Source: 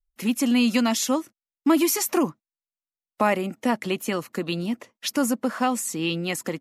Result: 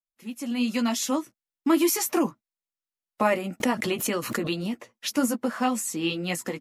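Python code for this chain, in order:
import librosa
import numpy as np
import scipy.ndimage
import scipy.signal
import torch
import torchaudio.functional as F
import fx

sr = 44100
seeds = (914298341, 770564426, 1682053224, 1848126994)

y = fx.fade_in_head(x, sr, length_s=1.21)
y = fx.chorus_voices(y, sr, voices=4, hz=0.93, base_ms=13, depth_ms=4.8, mix_pct=35)
y = fx.pre_swell(y, sr, db_per_s=57.0, at=(3.6, 4.72))
y = F.gain(torch.from_numpy(y), 1.0).numpy()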